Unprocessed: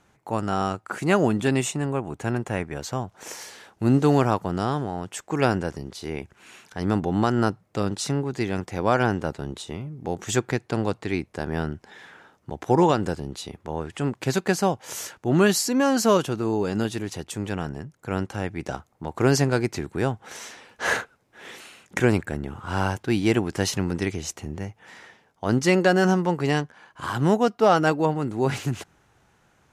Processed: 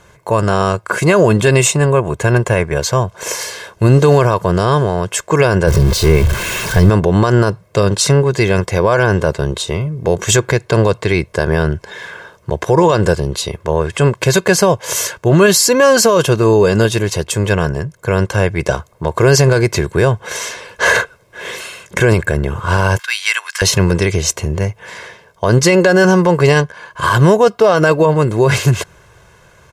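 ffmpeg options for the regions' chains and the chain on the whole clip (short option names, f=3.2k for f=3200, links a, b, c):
-filter_complex "[0:a]asettb=1/sr,asplit=3[a][b][c];[a]atrim=end=5.674[d];[b]atrim=start=5.67:end=6.9,asetpts=PTS-STARTPTS,afade=t=in:d=0.004:c=qsin,afade=t=out:st=1.226:d=0.004:c=qsin,aeval=exprs='val(0)+0.5*0.0224*sgn(val(0))':c=same,lowshelf=f=260:g=10.5[e];[c]atrim=start=6.896[f];[d][e]acrossfade=d=0.004:c1=hsin:c2=qsin[g];[g][f]acrossfade=d=0.004:c1=qsin:c2=hsin,asettb=1/sr,asplit=3[h][i][j];[h]atrim=end=22.994[k];[i]atrim=start=22.99:end=23.62,asetpts=PTS-STARTPTS,afade=t=in:d=0.004:c=qsin,afade=t=out:st=0.626:d=0.004:c=qsin,acompressor=mode=upward:threshold=-33dB:ratio=2.5:attack=3.2:release=140:knee=2.83:detection=peak,highpass=f=1.3k:w=0.5412,highpass=f=1.3k:w=1.3066[l];[j]atrim=start=23.616[m];[k][l]acrossfade=d=0.004:c1=hsin:c2=qsin[n];[n][m]acrossfade=d=0.004:c1=qsin:c2=hsin,aecho=1:1:1.9:0.72,alimiter=level_in=15dB:limit=-1dB:release=50:level=0:latency=1,volume=-1dB"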